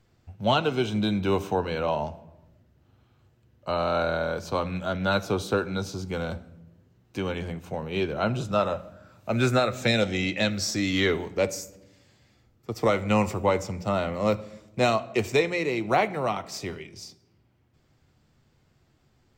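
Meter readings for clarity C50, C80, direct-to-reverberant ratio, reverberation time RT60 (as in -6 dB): 17.5 dB, 20.0 dB, 10.5 dB, 1.0 s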